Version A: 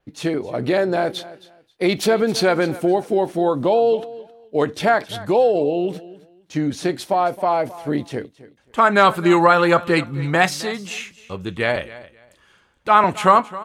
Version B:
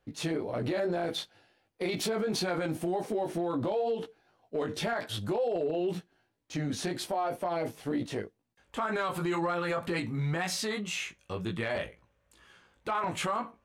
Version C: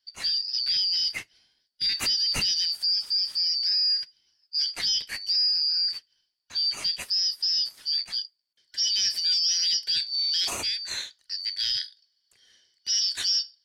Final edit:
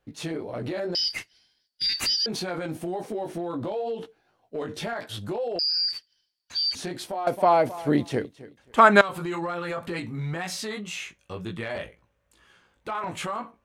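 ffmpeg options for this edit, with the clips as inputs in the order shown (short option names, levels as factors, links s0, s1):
-filter_complex "[2:a]asplit=2[s0][s1];[1:a]asplit=4[s2][s3][s4][s5];[s2]atrim=end=0.952[s6];[s0]atrim=start=0.948:end=2.262[s7];[s3]atrim=start=2.258:end=5.592[s8];[s1]atrim=start=5.588:end=6.752[s9];[s4]atrim=start=6.748:end=7.272[s10];[0:a]atrim=start=7.268:end=9.012[s11];[s5]atrim=start=9.008[s12];[s6][s7]acrossfade=d=0.004:c1=hsin:c2=hsin[s13];[s13][s8]acrossfade=d=0.004:c1=hsin:c2=hsin[s14];[s14][s9]acrossfade=d=0.004:c1=hsin:c2=hsin[s15];[s15][s10]acrossfade=d=0.004:c1=hsin:c2=hsin[s16];[s16][s11]acrossfade=d=0.004:c1=hsin:c2=hsin[s17];[s17][s12]acrossfade=d=0.004:c1=hsin:c2=hsin"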